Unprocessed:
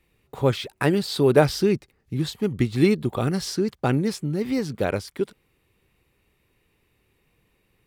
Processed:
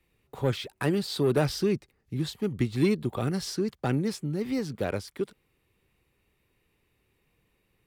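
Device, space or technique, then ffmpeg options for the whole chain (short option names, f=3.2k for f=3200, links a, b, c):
one-band saturation: -filter_complex "[0:a]acrossover=split=280|3600[a][b][c];[b]asoftclip=type=tanh:threshold=-16.5dB[d];[a][d][c]amix=inputs=3:normalize=0,volume=-4.5dB"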